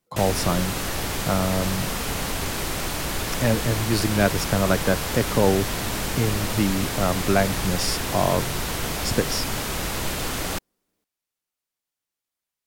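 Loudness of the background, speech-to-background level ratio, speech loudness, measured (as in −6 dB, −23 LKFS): −27.0 LKFS, 2.0 dB, −25.0 LKFS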